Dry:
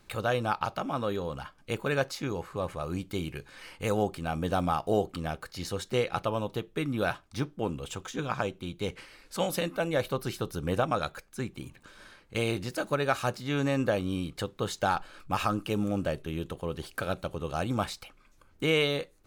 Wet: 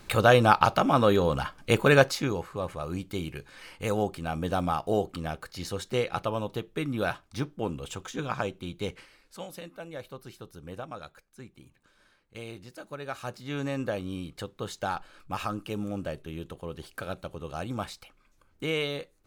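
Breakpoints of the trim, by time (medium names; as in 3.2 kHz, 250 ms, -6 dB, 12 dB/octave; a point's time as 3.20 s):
1.97 s +9.5 dB
2.52 s 0 dB
8.84 s 0 dB
9.47 s -12 dB
12.88 s -12 dB
13.52 s -4 dB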